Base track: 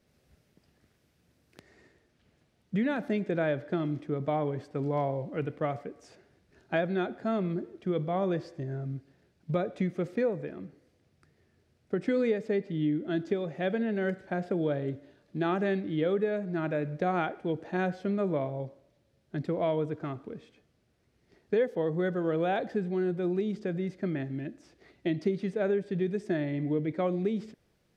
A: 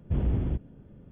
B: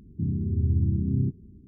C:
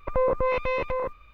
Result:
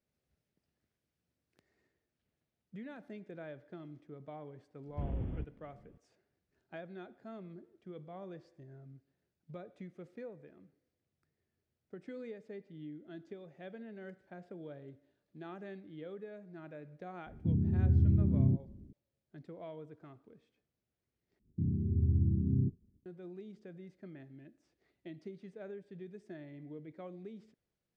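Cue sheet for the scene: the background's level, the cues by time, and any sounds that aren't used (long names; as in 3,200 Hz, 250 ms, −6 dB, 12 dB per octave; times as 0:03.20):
base track −18 dB
0:04.87: mix in A −11 dB
0:17.26: mix in B −3 dB
0:21.39: overwrite with B −5.5 dB + downward expander −39 dBFS
not used: C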